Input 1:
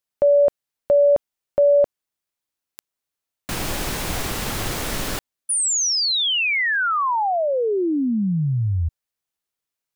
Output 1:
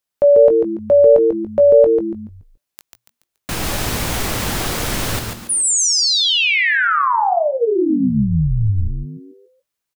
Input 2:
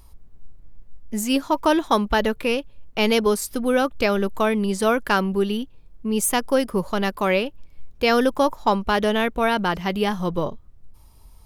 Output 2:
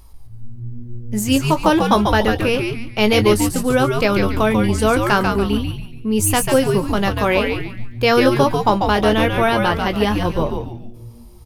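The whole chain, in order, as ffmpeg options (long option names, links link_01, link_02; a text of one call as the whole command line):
ffmpeg -i in.wav -filter_complex "[0:a]asplit=2[link_01][link_02];[link_02]adelay=19,volume=-10.5dB[link_03];[link_01][link_03]amix=inputs=2:normalize=0,asplit=6[link_04][link_05][link_06][link_07][link_08][link_09];[link_05]adelay=142,afreqshift=-120,volume=-4.5dB[link_10];[link_06]adelay=284,afreqshift=-240,volume=-13.1dB[link_11];[link_07]adelay=426,afreqshift=-360,volume=-21.8dB[link_12];[link_08]adelay=568,afreqshift=-480,volume=-30.4dB[link_13];[link_09]adelay=710,afreqshift=-600,volume=-39dB[link_14];[link_04][link_10][link_11][link_12][link_13][link_14]amix=inputs=6:normalize=0,volume=3dB" out.wav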